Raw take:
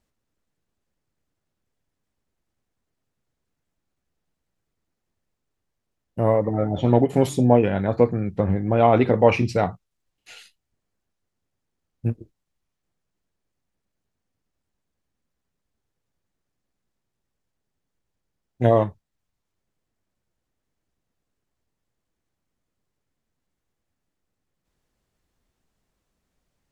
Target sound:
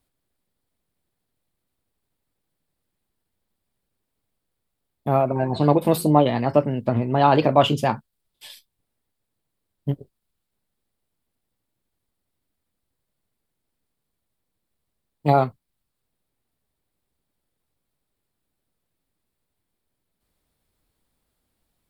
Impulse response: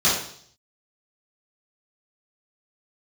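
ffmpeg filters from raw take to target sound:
-filter_complex "[0:a]acrossover=split=540[s0][s1];[s1]aexciter=amount=1.3:drive=5.3:freq=2800[s2];[s0][s2]amix=inputs=2:normalize=0,asetrate=53802,aresample=44100"

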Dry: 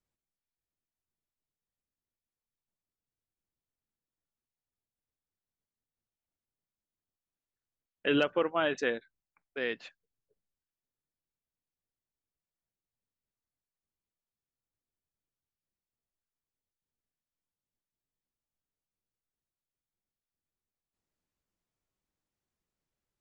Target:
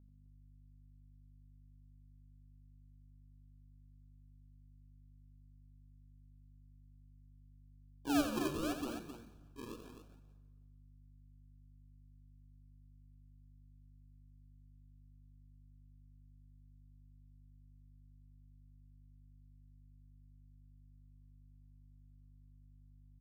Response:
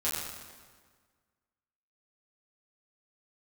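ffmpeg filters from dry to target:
-filter_complex "[0:a]asplit=3[s0][s1][s2];[s0]bandpass=f=300:t=q:w=8,volume=1[s3];[s1]bandpass=f=870:t=q:w=8,volume=0.501[s4];[s2]bandpass=f=2240:t=q:w=8,volume=0.355[s5];[s3][s4][s5]amix=inputs=3:normalize=0,asplit=2[s6][s7];[s7]asplit=4[s8][s9][s10][s11];[s8]adelay=172,afreqshift=-69,volume=0.188[s12];[s9]adelay=344,afreqshift=-138,volume=0.0733[s13];[s10]adelay=516,afreqshift=-207,volume=0.0285[s14];[s11]adelay=688,afreqshift=-276,volume=0.0112[s15];[s12][s13][s14][s15]amix=inputs=4:normalize=0[s16];[s6][s16]amix=inputs=2:normalize=0,acrusher=samples=42:mix=1:aa=0.000001:lfo=1:lforange=42:lforate=0.86,aeval=exprs='val(0)+0.000794*(sin(2*PI*50*n/s)+sin(2*PI*2*50*n/s)/2+sin(2*PI*3*50*n/s)/3+sin(2*PI*4*50*n/s)/4+sin(2*PI*5*50*n/s)/5)':c=same,asplit=2[s17][s18];[1:a]atrim=start_sample=2205[s19];[s18][s19]afir=irnorm=-1:irlink=0,volume=0.0891[s20];[s17][s20]amix=inputs=2:normalize=0,asoftclip=type=tanh:threshold=0.0376,asuperstop=centerf=2000:order=20:qfactor=3.8,aecho=1:1:87.46|262.4:0.398|0.355,volume=1.26"

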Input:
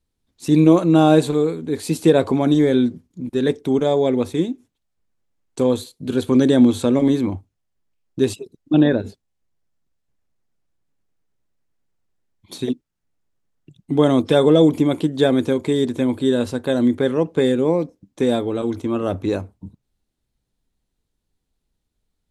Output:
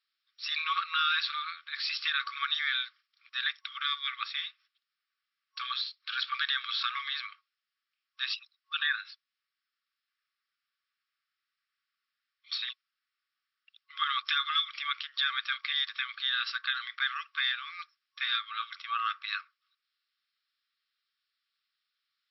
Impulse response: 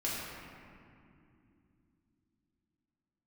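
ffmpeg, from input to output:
-af "afftfilt=real='re*between(b*sr/4096,1100,5600)':imag='im*between(b*sr/4096,1100,5600)':win_size=4096:overlap=0.75,alimiter=limit=0.075:level=0:latency=1:release=120,volume=1.68"

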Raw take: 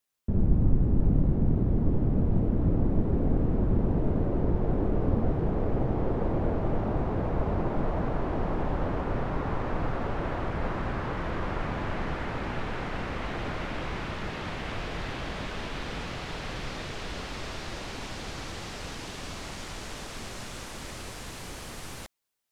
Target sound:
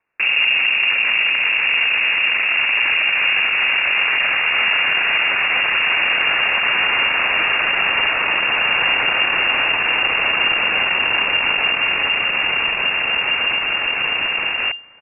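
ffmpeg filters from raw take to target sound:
-filter_complex "[0:a]asplit=2[s0][s1];[s1]asoftclip=type=tanh:threshold=0.0473,volume=0.668[s2];[s0][s2]amix=inputs=2:normalize=0,alimiter=limit=0.126:level=0:latency=1:release=59,areverse,acompressor=mode=upward:threshold=0.0126:ratio=2.5,areverse,atempo=1.5,aeval=exprs='0.126*sin(PI/2*3.55*val(0)/0.126)':c=same,aeval=exprs='0.133*(cos(1*acos(clip(val(0)/0.133,-1,1)))-cos(1*PI/2))+0.0211*(cos(3*acos(clip(val(0)/0.133,-1,1)))-cos(3*PI/2))+0.0188*(cos(4*acos(clip(val(0)/0.133,-1,1)))-cos(4*PI/2))+0.0188*(cos(6*acos(clip(val(0)/0.133,-1,1)))-cos(6*PI/2))+0.0335*(cos(8*acos(clip(val(0)/0.133,-1,1)))-cos(8*PI/2))':c=same,lowpass=f=2400:t=q:w=0.5098,lowpass=f=2400:t=q:w=0.6013,lowpass=f=2400:t=q:w=0.9,lowpass=f=2400:t=q:w=2.563,afreqshift=-2800,volume=1.41"

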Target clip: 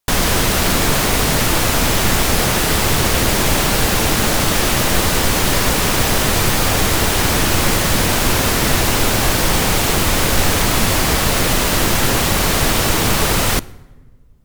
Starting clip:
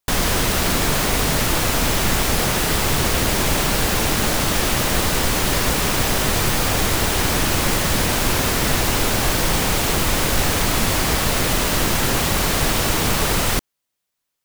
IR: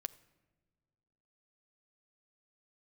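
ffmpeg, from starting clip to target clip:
-filter_complex "[0:a]asplit=2[s0][s1];[1:a]atrim=start_sample=2205,asetrate=34839,aresample=44100[s2];[s1][s2]afir=irnorm=-1:irlink=0,volume=1.78[s3];[s0][s3]amix=inputs=2:normalize=0,volume=0.596"

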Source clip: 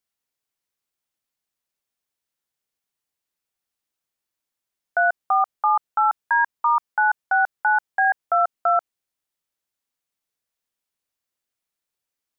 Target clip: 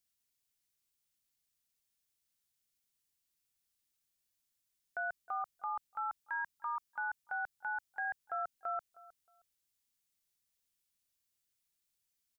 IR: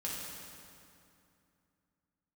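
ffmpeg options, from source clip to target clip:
-filter_complex "[0:a]equalizer=f=740:w=0.36:g=-12.5,alimiter=level_in=2.99:limit=0.0631:level=0:latency=1:release=12,volume=0.335,asplit=2[s0][s1];[s1]adelay=313,lowpass=f=1500:p=1,volume=0.126,asplit=2[s2][s3];[s3]adelay=313,lowpass=f=1500:p=1,volume=0.25[s4];[s0][s2][s4]amix=inputs=3:normalize=0,volume=1.41"

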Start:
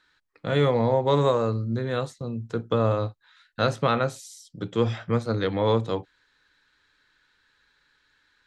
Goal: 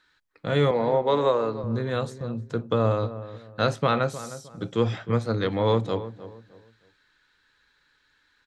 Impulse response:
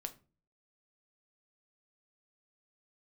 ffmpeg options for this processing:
-filter_complex "[0:a]asettb=1/sr,asplit=3[s0][s1][s2];[s0]atrim=end=0.714[s3];[s1]atrim=start=0.71:end=1.64,asetpts=PTS-STARTPTS,afade=t=in:d=0.004:c=qsin,afade=t=out:st=0.926:d=0.004:c=qsin,acrossover=split=220 5300:gain=0.178 1 0.2[s4][s5][s6];[s4][s5][s6]amix=inputs=3:normalize=0[s7];[s2]atrim=start=1.636[s8];[s3][s7]acrossfade=d=0.004:c1=hsin:c2=qsin[s9];[s9][s8]acrossfade=d=0.004:c1=qsin:c2=hsin,asplit=2[s10][s11];[s11]adelay=309,lowpass=f=1500:p=1,volume=0.211,asplit=2[s12][s13];[s13]adelay=309,lowpass=f=1500:p=1,volume=0.3,asplit=2[s14][s15];[s15]adelay=309,lowpass=f=1500:p=1,volume=0.3[s16];[s12][s14][s16]amix=inputs=3:normalize=0[s17];[s10][s17]amix=inputs=2:normalize=0"

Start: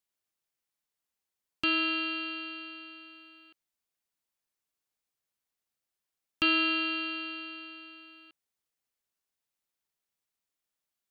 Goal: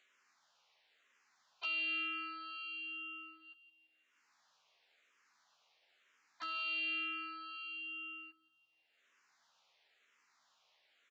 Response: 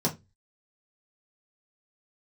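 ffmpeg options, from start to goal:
-filter_complex "[0:a]afftdn=nr=23:nf=-43,adynamicequalizer=threshold=0.00141:dfrequency=1000:dqfactor=5.2:tfrequency=1000:tqfactor=5.2:attack=5:release=100:ratio=0.375:range=2.5:mode=cutabove:tftype=bell,acompressor=mode=upward:threshold=0.00794:ratio=2.5,alimiter=limit=0.075:level=0:latency=1:release=45,acompressor=threshold=0.00224:ratio=2,aeval=exprs='val(0)+0.000112*(sin(2*PI*50*n/s)+sin(2*PI*2*50*n/s)/2+sin(2*PI*3*50*n/s)/3+sin(2*PI*4*50*n/s)/4+sin(2*PI*5*50*n/s)/5)':c=same,aresample=16000,aeval=exprs='clip(val(0),-1,0.0133)':c=same,aresample=44100,crystalizer=i=2.5:c=0,highpass=710,lowpass=2400,asplit=2[s0][s1];[s1]adelay=13,volume=0.75[s2];[s0][s2]amix=inputs=2:normalize=0,aecho=1:1:172|344|516|688:0.178|0.0729|0.0299|0.0123,asplit=2[s3][s4];[s4]afreqshift=-1[s5];[s3][s5]amix=inputs=2:normalize=1,volume=2.11"

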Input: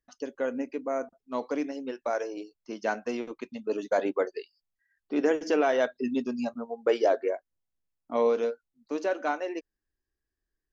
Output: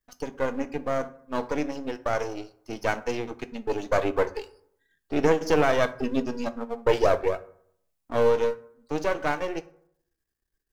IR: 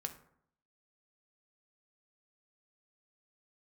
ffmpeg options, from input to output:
-filter_complex "[0:a]aeval=exprs='if(lt(val(0),0),0.251*val(0),val(0))':c=same,asplit=2[s0][s1];[1:a]atrim=start_sample=2205,highshelf=f=6000:g=9.5[s2];[s1][s2]afir=irnorm=-1:irlink=0,volume=1.19[s3];[s0][s3]amix=inputs=2:normalize=0"

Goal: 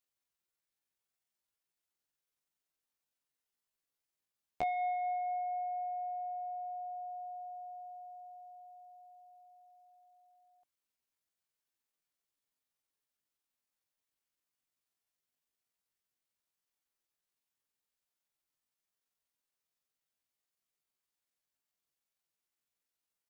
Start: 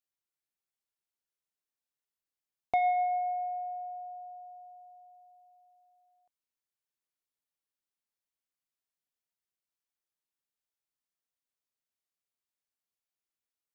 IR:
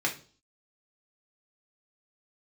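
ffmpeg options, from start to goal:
-af "acompressor=threshold=0.00631:ratio=2,atempo=0.59,volume=1.33"

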